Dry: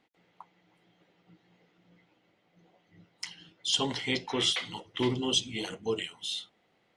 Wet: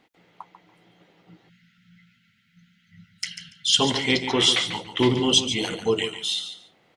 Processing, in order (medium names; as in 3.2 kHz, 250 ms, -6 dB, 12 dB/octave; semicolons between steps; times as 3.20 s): on a send: feedback delay 143 ms, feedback 17%, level -10 dB; on the sum: spectral selection erased 1.49–3.79 s, 250–1300 Hz; trim +8.5 dB